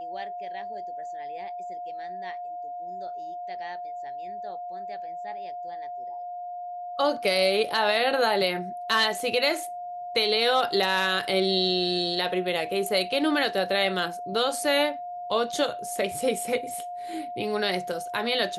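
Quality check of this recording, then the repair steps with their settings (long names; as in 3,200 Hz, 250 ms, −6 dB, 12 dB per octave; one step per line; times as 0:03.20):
whistle 710 Hz −33 dBFS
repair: notch filter 710 Hz, Q 30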